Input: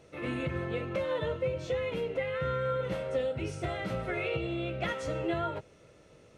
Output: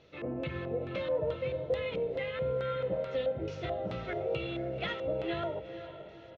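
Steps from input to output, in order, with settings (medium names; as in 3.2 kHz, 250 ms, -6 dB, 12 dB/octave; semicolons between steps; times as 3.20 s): resampled via 16 kHz; LFO low-pass square 2.3 Hz 650–3800 Hz; echo that smears into a reverb 487 ms, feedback 44%, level -11.5 dB; trim -4 dB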